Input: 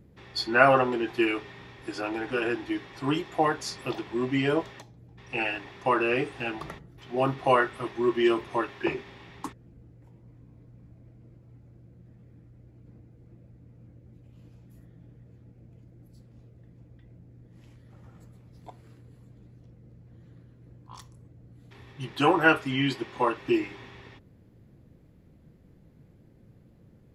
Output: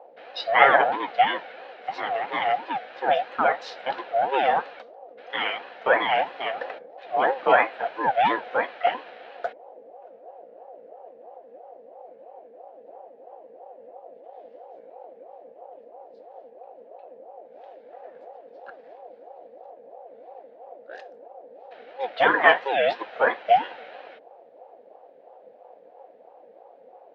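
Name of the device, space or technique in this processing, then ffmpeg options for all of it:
voice changer toy: -af "aeval=exprs='val(0)*sin(2*PI*510*n/s+510*0.35/3*sin(2*PI*3*n/s))':c=same,highpass=450,equalizer=f=510:t=q:w=4:g=10,equalizer=f=720:t=q:w=4:g=9,equalizer=f=1.1k:t=q:w=4:g=-4,equalizer=f=1.7k:t=q:w=4:g=6,lowpass=f=4k:w=0.5412,lowpass=f=4k:w=1.3066,volume=4dB"

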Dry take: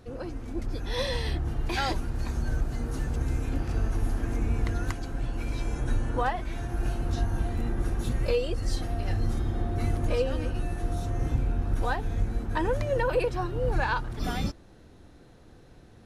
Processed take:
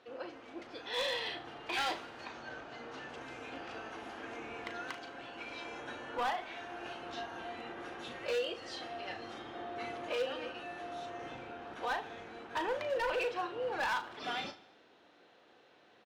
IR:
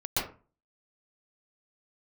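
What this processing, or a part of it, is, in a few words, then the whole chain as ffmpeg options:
megaphone: -filter_complex "[0:a]asettb=1/sr,asplit=3[a][b][c];[a]atrim=end=2.254[d];[b]atrim=start=2.25:end=3.09,asetpts=PTS-STARTPTS,afade=t=in:d=0.004:c=qsin,afade=t=out:st=0.836:d=0.004:c=qsin,lowpass=6.2k[e];[c]atrim=start=3.086[f];[d][e]acrossfade=d=0.004:c1=hsin:c2=qsin[g];[g][f]acrossfade=d=0.004:c1=qsin:c2=hsin,highpass=530,lowpass=3.9k,equalizer=f=3k:t=o:w=0.6:g=6,asoftclip=type=hard:threshold=-27.5dB,asplit=2[h][i];[i]adelay=37,volume=-9dB[j];[h][j]amix=inputs=2:normalize=0,aecho=1:1:75|150|225|300|375:0.112|0.0651|0.0377|0.0219|0.0127,volume=-2.5dB"

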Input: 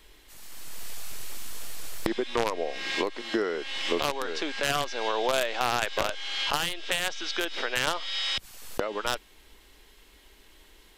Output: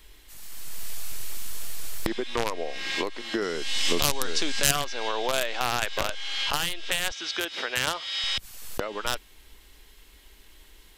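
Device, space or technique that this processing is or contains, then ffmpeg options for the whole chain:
smiley-face EQ: -filter_complex "[0:a]lowshelf=f=160:g=4,equalizer=f=450:t=o:w=2.7:g=-3.5,highshelf=f=9.5k:g=5,asettb=1/sr,asplit=3[a][b][c];[a]atrim=end=3.424[d];[b]atrim=start=3.42:end=4.71,asetpts=PTS-STARTPTS,afade=t=in:d=0.004:c=qsin,afade=t=out:st=1.286:d=0.004:c=qsin,bass=f=250:g=8,treble=f=4k:g=12[e];[c]atrim=start=4.706[f];[d][e]acrossfade=d=0.004:c1=hsin:c2=qsin[g];[g][f]acrossfade=d=0.004:c1=qsin:c2=hsin,asettb=1/sr,asplit=3[h][i][j];[h]atrim=end=7.114[k];[i]atrim=start=7.11:end=8.24,asetpts=PTS-STARTPTS,afade=t=in:d=0.004:c=qsin,afade=t=out:st=1.126:d=0.004:c=qsin,highpass=42[l];[j]atrim=start=8.236[m];[k][l]acrossfade=d=0.004:c1=hsin:c2=qsin[n];[n][m]acrossfade=d=0.004:c1=qsin:c2=hsin,volume=1dB"

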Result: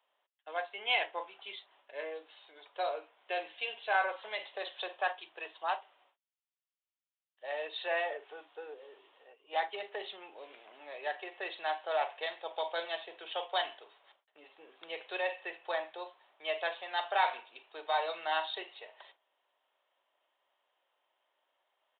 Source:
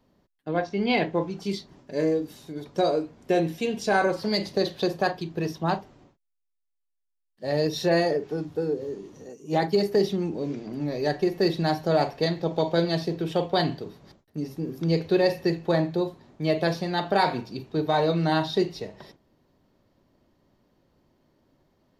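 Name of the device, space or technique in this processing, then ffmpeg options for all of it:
musical greeting card: -af "aresample=8000,aresample=44100,highpass=f=680:w=0.5412,highpass=f=680:w=1.3066,equalizer=f=3k:t=o:w=0.58:g=7,volume=-5dB"

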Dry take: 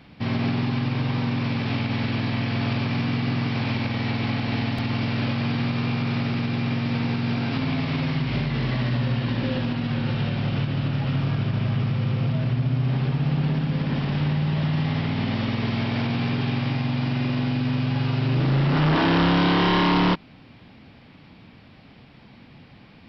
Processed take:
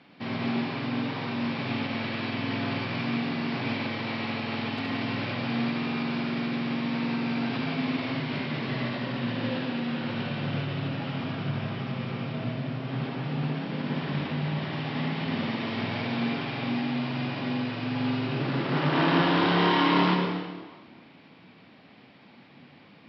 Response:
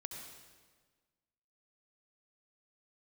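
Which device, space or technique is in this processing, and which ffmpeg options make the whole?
supermarket ceiling speaker: -filter_complex "[0:a]highpass=220,lowpass=5.1k[a];[1:a]atrim=start_sample=2205[b];[a][b]afir=irnorm=-1:irlink=0,volume=1dB"

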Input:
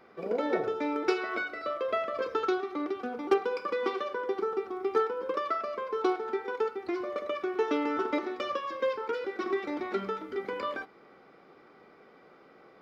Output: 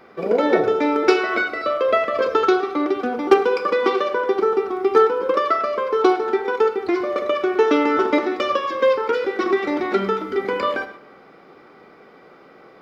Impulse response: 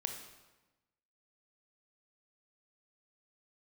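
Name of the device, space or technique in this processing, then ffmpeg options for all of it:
keyed gated reverb: -filter_complex "[0:a]asplit=3[a][b][c];[1:a]atrim=start_sample=2205[d];[b][d]afir=irnorm=-1:irlink=0[e];[c]apad=whole_len=565241[f];[e][f]sidechaingate=range=-8dB:threshold=-52dB:ratio=16:detection=peak,volume=-2dB[g];[a][g]amix=inputs=2:normalize=0,volume=7dB"

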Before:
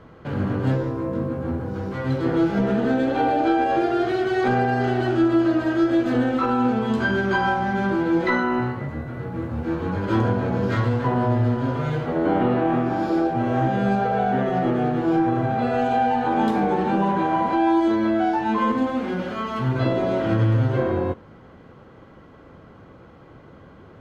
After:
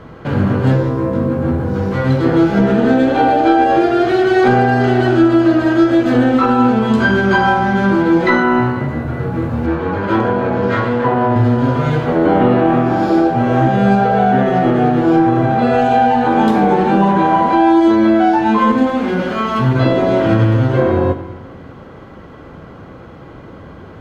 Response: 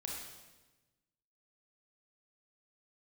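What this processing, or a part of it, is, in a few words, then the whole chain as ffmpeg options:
ducked reverb: -filter_complex "[0:a]asettb=1/sr,asplit=3[a][b][c];[a]atrim=end=9.664[d];[b]atrim=start=9.66:end=11.36,asetpts=PTS-STARTPTS,afade=t=in:d=0.004:c=qsin,afade=t=out:st=1.696:d=0.004:c=qsin,bass=f=250:g=-8,treble=f=4k:g=-10[e];[c]atrim=start=11.356[f];[d][e]acrossfade=d=0.004:c1=hsin:c2=qsin[g];[g][f]acrossfade=d=0.004:c1=qsin:c2=hsin,asplit=3[h][i][j];[1:a]atrim=start_sample=2205[k];[i][k]afir=irnorm=-1:irlink=0[l];[j]apad=whole_len=1058589[m];[l][m]sidechaincompress=threshold=-22dB:ratio=8:attack=16:release=1270,volume=-1.5dB[n];[h][n]amix=inputs=2:normalize=0,volume=6.5dB"

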